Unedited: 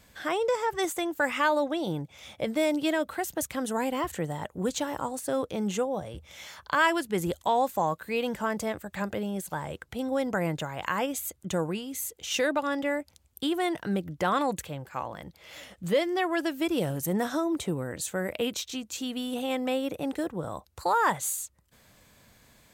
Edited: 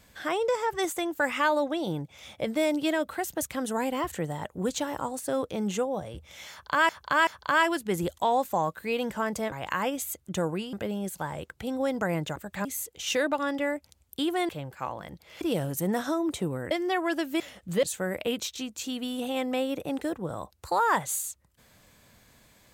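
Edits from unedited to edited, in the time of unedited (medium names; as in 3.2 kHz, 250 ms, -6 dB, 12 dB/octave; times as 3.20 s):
6.51–6.89 s: loop, 3 plays
8.76–9.05 s: swap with 10.68–11.89 s
13.73–14.63 s: delete
15.55–15.98 s: swap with 16.67–17.97 s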